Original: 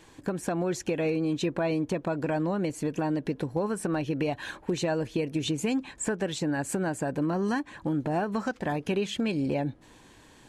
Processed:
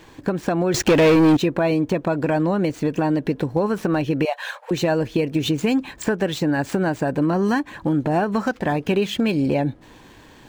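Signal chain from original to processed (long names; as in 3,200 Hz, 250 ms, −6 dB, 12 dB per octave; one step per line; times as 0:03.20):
running median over 5 samples
0:00.74–0:01.37: leveller curve on the samples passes 3
0:04.25–0:04.71: linear-phase brick-wall high-pass 460 Hz
level +8 dB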